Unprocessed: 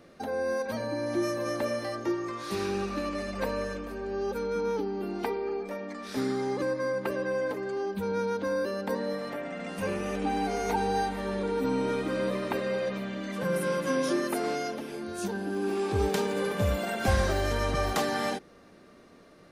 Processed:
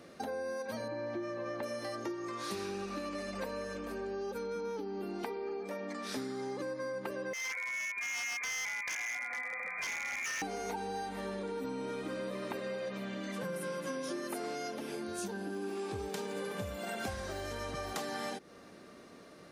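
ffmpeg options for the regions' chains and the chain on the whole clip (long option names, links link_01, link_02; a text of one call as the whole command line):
ffmpeg -i in.wav -filter_complex "[0:a]asettb=1/sr,asplit=3[link_01][link_02][link_03];[link_01]atrim=end=0.884[link_04];[link_02]atrim=start=0.88:end=1.63,asetpts=PTS-STARTPTS,afade=type=in:duration=0.004:curve=qsin,afade=type=out:start_time=0.746:duration=0.004:curve=qsin,lowpass=2900,bandreject=frequency=280:width=6.8[link_05];[link_03]atrim=start=1.626[link_06];[link_04][link_05]acrossfade=duration=0.004:curve1=hsin:curve2=qsin[link_07];[link_07][link_06]acrossfade=duration=0.004:curve1=qsin:curve2=hsin,asettb=1/sr,asplit=3[link_08][link_09][link_10];[link_08]atrim=end=7.334[link_11];[link_09]atrim=start=7.33:end=10.42,asetpts=PTS-STARTPTS,afade=type=in:duration=0.004:curve=qsin,afade=type=out:start_time=3.086:duration=0.004:curve=qsin,highpass=frequency=290:poles=1,lowpass=frequency=2200:width_type=q:width=0.5098,lowpass=frequency=2200:width_type=q:width=0.6013,lowpass=frequency=2200:width_type=q:width=0.9,lowpass=frequency=2200:width_type=q:width=2.563,afreqshift=-2600,aeval=exprs='0.0316*(abs(mod(val(0)/0.0316+3,4)-2)-1)':channel_layout=same[link_12];[link_10]atrim=start=10.416[link_13];[link_11][link_12]acrossfade=duration=0.004:curve1=hsin:curve2=qsin[link_14];[link_14][link_13]acrossfade=duration=0.004:curve1=qsin:curve2=hsin,acompressor=threshold=-37dB:ratio=6,highpass=frequency=100:poles=1,equalizer=frequency=7800:width=0.62:gain=3.5,volume=1dB" out.wav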